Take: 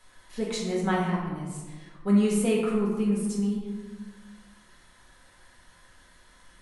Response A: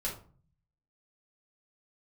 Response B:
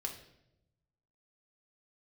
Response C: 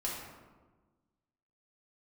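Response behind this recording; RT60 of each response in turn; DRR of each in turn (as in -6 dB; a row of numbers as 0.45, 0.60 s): C; 0.45, 0.85, 1.3 s; -5.0, 0.0, -5.5 dB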